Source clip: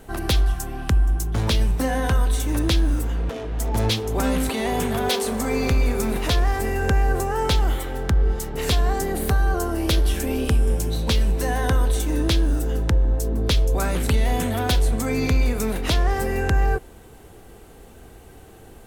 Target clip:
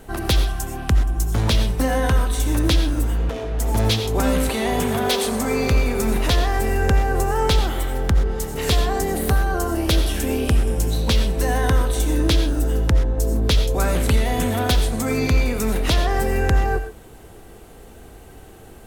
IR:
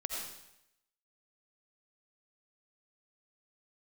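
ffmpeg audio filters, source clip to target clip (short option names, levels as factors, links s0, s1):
-filter_complex "[0:a]asplit=2[s0][s1];[1:a]atrim=start_sample=2205,atrim=end_sample=6174[s2];[s1][s2]afir=irnorm=-1:irlink=0,volume=0.794[s3];[s0][s3]amix=inputs=2:normalize=0,volume=0.75"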